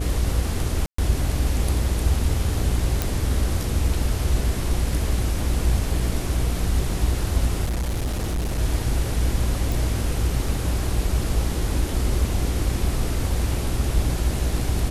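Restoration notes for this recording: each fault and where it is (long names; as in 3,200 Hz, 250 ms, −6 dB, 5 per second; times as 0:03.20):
mains buzz 60 Hz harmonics 13 −26 dBFS
0:00.86–0:00.98: drop-out 124 ms
0:03.02: click
0:07.64–0:08.59: clipping −21 dBFS
0:09.72: click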